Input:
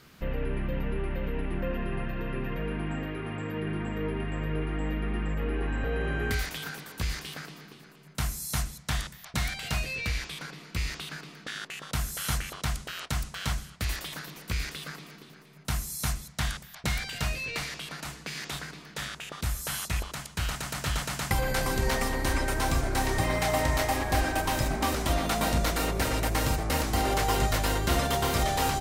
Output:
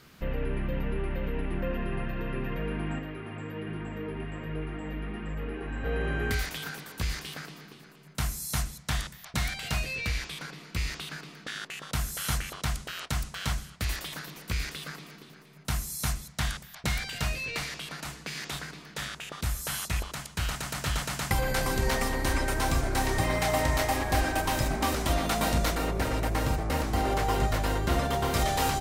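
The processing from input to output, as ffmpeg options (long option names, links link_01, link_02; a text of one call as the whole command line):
ffmpeg -i in.wav -filter_complex "[0:a]asplit=3[link_01][link_02][link_03];[link_01]afade=type=out:start_time=2.98:duration=0.02[link_04];[link_02]flanger=delay=6.2:depth=6.5:regen=-54:speed=1.3:shape=triangular,afade=type=in:start_time=2.98:duration=0.02,afade=type=out:start_time=5.84:duration=0.02[link_05];[link_03]afade=type=in:start_time=5.84:duration=0.02[link_06];[link_04][link_05][link_06]amix=inputs=3:normalize=0,asettb=1/sr,asplit=3[link_07][link_08][link_09];[link_07]atrim=end=25.754[link_10];[link_08]atrim=start=25.75:end=28.34,asetpts=PTS-STARTPTS,afade=type=in:duration=0.004:curve=qsin,afade=type=out:start_time=2.586:duration=0.004:curve=qsin,highshelf=frequency=2500:gain=-7.5[link_11];[link_09]atrim=start=28.336[link_12];[link_10][link_11]acrossfade=duration=0.004:curve1=hsin:curve2=qsin[link_13];[link_13][link_12]acrossfade=duration=0.004:curve1=qsin:curve2=hsin" out.wav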